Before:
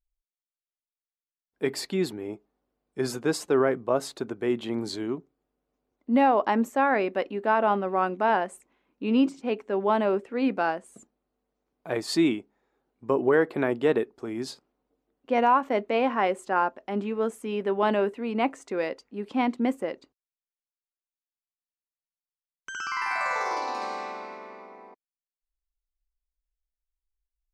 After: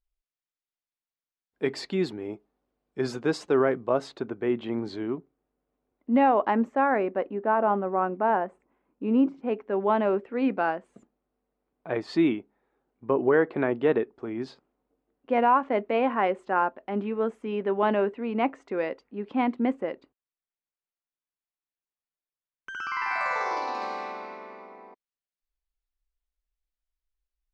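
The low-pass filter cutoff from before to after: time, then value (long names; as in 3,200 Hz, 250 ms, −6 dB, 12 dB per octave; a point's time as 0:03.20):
0:03.92 4,800 Hz
0:04.32 2,700 Hz
0:06.37 2,700 Hz
0:07.23 1,400 Hz
0:09.26 1,400 Hz
0:09.85 2,700 Hz
0:22.76 2,700 Hz
0:23.18 4,700 Hz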